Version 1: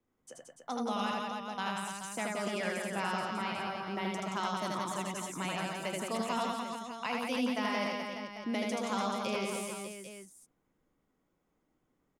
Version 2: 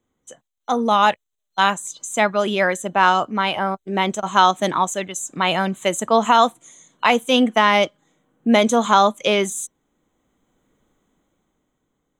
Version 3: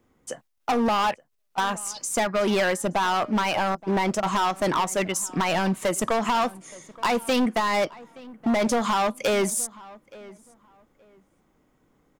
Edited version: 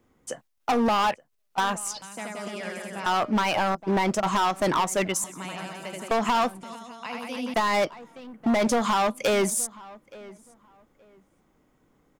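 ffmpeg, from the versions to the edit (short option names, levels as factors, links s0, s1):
-filter_complex "[0:a]asplit=3[s0][s1][s2];[2:a]asplit=4[s3][s4][s5][s6];[s3]atrim=end=2.022[s7];[s0]atrim=start=2.018:end=3.062[s8];[s4]atrim=start=3.058:end=5.242[s9];[s1]atrim=start=5.238:end=6.112[s10];[s5]atrim=start=6.108:end=6.632[s11];[s2]atrim=start=6.628:end=7.542[s12];[s6]atrim=start=7.538[s13];[s7][s8]acrossfade=d=0.004:c1=hsin:c2=hsin[s14];[s14][s9]acrossfade=d=0.004:c1=hsin:c2=hsin[s15];[s15][s10]acrossfade=d=0.004:c1=hsin:c2=hsin[s16];[s16][s11]acrossfade=d=0.004:c1=hsin:c2=hsin[s17];[s17][s12]acrossfade=d=0.004:c1=hsin:c2=hsin[s18];[s18][s13]acrossfade=d=0.004:c1=hsin:c2=hsin"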